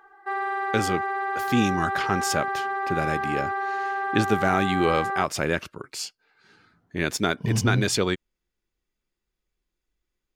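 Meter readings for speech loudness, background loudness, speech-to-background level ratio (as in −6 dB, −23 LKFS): −26.5 LKFS, −28.0 LKFS, 1.5 dB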